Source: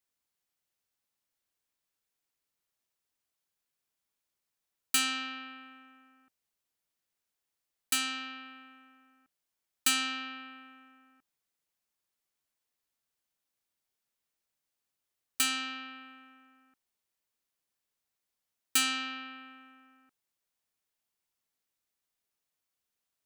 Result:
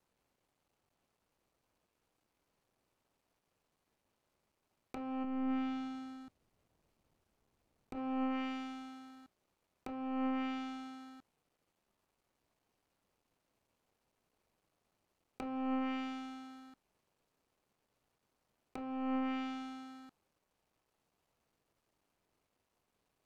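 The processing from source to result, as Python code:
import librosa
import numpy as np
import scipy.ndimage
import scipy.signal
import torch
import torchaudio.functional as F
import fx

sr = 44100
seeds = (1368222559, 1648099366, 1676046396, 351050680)

y = scipy.signal.medfilt(x, 25)
y = fx.low_shelf(y, sr, hz=280.0, db=9.0, at=(5.24, 7.96))
y = fx.env_lowpass_down(y, sr, base_hz=1100.0, full_db=-43.0)
y = fx.over_compress(y, sr, threshold_db=-48.0, ratio=-1.0)
y = F.gain(torch.from_numpy(y), 11.0).numpy()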